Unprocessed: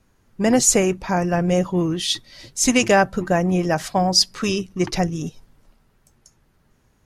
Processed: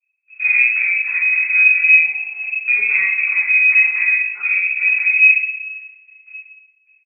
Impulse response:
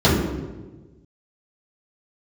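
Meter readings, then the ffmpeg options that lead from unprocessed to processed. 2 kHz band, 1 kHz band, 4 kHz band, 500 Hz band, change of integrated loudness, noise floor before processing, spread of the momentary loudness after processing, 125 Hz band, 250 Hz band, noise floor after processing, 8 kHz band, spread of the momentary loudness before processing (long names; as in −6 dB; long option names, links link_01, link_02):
+17.5 dB, below −20 dB, below −40 dB, below −30 dB, +7.0 dB, −62 dBFS, 11 LU, below −40 dB, below −40 dB, −61 dBFS, below −40 dB, 9 LU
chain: -filter_complex "[0:a]acrossover=split=930[link_01][link_02];[link_01]aeval=exprs='val(0)*(1-0.5/2+0.5/2*cos(2*PI*3.8*n/s))':channel_layout=same[link_03];[link_02]aeval=exprs='val(0)*(1-0.5/2-0.5/2*cos(2*PI*3.8*n/s))':channel_layout=same[link_04];[link_03][link_04]amix=inputs=2:normalize=0,agate=range=-36dB:threshold=-57dB:ratio=16:detection=peak,equalizer=frequency=130:width=6.6:gain=12.5,acompressor=threshold=-34dB:ratio=2.5,aemphasis=mode=reproduction:type=riaa,asoftclip=type=tanh:threshold=-27dB,aecho=1:1:50|105|165.5|232|305.3:0.631|0.398|0.251|0.158|0.1[link_05];[1:a]atrim=start_sample=2205,afade=type=out:start_time=0.28:duration=0.01,atrim=end_sample=12789,asetrate=83790,aresample=44100[link_06];[link_05][link_06]afir=irnorm=-1:irlink=0,lowpass=frequency=2300:width_type=q:width=0.5098,lowpass=frequency=2300:width_type=q:width=0.6013,lowpass=frequency=2300:width_type=q:width=0.9,lowpass=frequency=2300:width_type=q:width=2.563,afreqshift=-2700,volume=-15.5dB"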